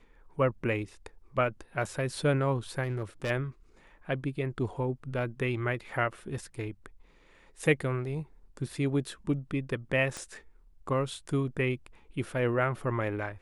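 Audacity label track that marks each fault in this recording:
2.830000	3.310000	clipped -28 dBFS
10.170000	10.170000	pop -23 dBFS

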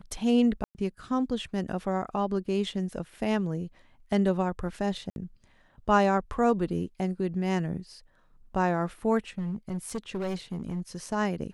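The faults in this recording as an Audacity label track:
0.640000	0.750000	gap 0.109 s
5.100000	5.160000	gap 61 ms
9.380000	10.950000	clipped -28 dBFS

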